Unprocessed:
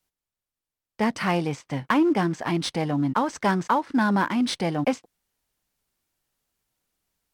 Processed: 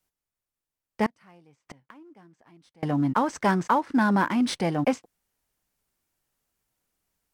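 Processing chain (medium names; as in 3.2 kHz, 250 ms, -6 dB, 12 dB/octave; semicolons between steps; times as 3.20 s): 1.06–2.83 s: inverted gate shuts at -27 dBFS, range -30 dB; peaking EQ 3.8 kHz -3.5 dB 0.97 oct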